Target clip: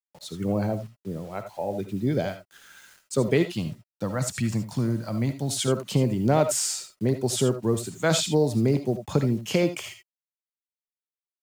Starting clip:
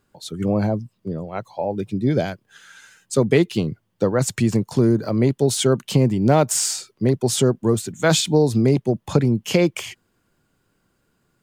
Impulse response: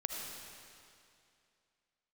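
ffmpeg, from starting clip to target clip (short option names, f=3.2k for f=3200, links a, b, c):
-filter_complex "[0:a]asettb=1/sr,asplit=3[a][b][c];[a]atrim=end=3.554[d];[b]atrim=start=3.55:end=5.68,asetpts=PTS-STARTPTS,afade=t=in:d=0.004:c=qsin,afade=t=out:st=2.126:d=0.004:c=qsin,equalizer=f=410:w=2.4:g=-14[e];[c]atrim=start=5.676[f];[d][e]acrossfade=d=0.004:c1=hsin:c2=qsin[g];[g][f]acrossfade=d=0.004:c1=qsin:c2=hsin,acrusher=bits=7:mix=0:aa=0.000001[h];[1:a]atrim=start_sample=2205,atrim=end_sample=3969[i];[h][i]afir=irnorm=-1:irlink=0,volume=-4.5dB"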